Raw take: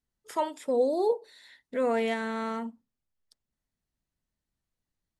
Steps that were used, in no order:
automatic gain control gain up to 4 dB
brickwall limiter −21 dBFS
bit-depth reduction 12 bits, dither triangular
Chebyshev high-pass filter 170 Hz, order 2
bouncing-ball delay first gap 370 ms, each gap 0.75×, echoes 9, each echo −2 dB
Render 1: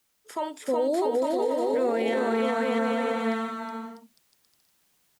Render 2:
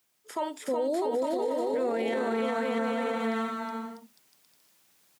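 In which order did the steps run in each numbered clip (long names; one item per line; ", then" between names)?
bouncing-ball delay, then brickwall limiter, then Chebyshev high-pass filter, then bit-depth reduction, then automatic gain control
bit-depth reduction, then bouncing-ball delay, then automatic gain control, then brickwall limiter, then Chebyshev high-pass filter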